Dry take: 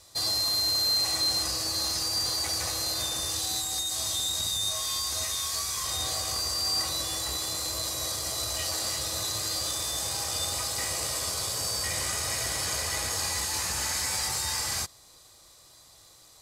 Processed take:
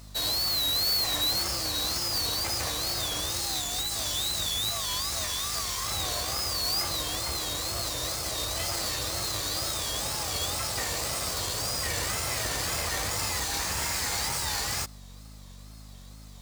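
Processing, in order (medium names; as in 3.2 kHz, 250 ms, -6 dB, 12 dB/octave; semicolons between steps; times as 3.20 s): square wave that keeps the level; hum 50 Hz, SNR 16 dB; wow and flutter 130 cents; trim -3.5 dB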